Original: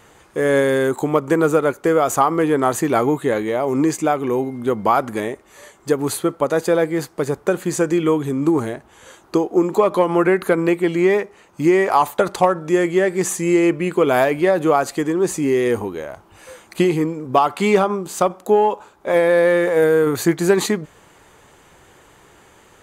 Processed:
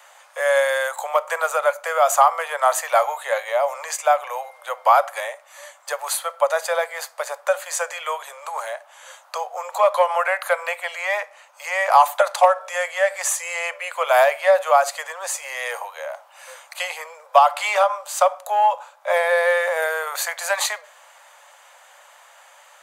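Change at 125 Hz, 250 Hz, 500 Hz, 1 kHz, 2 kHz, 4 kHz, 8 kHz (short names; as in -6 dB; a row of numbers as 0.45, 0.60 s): under -40 dB, under -40 dB, -4.5 dB, +2.5 dB, +2.0 dB, +2.0 dB, +2.0 dB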